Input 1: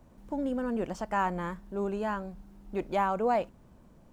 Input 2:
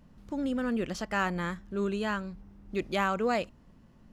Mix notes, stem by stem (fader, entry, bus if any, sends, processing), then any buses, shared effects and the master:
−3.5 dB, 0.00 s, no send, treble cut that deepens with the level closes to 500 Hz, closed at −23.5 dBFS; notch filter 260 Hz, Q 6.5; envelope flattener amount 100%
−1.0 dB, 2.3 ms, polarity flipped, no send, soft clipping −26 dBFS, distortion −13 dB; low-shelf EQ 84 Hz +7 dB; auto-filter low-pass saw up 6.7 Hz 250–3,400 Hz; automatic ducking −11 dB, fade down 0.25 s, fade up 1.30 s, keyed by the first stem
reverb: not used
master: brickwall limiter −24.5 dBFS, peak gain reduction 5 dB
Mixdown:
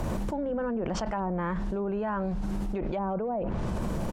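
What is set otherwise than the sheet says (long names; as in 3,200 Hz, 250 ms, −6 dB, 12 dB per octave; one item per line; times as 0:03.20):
stem 2 −1.0 dB → −12.0 dB
master: missing brickwall limiter −24.5 dBFS, peak gain reduction 5 dB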